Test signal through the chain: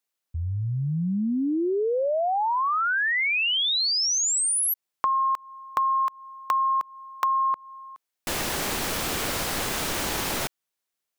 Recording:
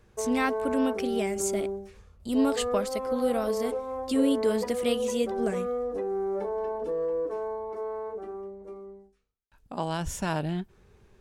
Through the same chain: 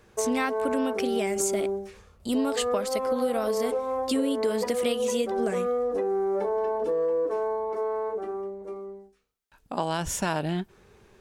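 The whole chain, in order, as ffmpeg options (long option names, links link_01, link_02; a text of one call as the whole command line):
ffmpeg -i in.wav -af "lowshelf=frequency=150:gain=-10.5,acompressor=threshold=-29dB:ratio=6,volume=6.5dB" out.wav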